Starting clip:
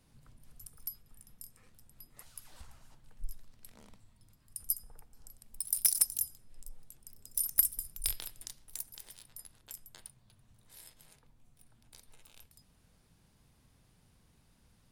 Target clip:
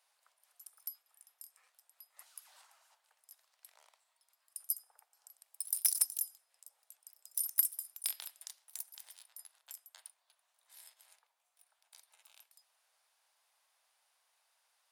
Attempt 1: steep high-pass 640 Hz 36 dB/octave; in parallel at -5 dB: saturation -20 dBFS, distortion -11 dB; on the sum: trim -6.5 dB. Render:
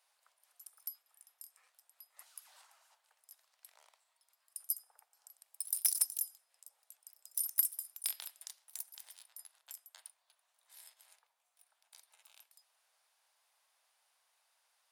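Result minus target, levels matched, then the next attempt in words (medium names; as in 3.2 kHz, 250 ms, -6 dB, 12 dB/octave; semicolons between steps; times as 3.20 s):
saturation: distortion +12 dB
steep high-pass 640 Hz 36 dB/octave; in parallel at -5 dB: saturation -10.5 dBFS, distortion -24 dB; on the sum: trim -6.5 dB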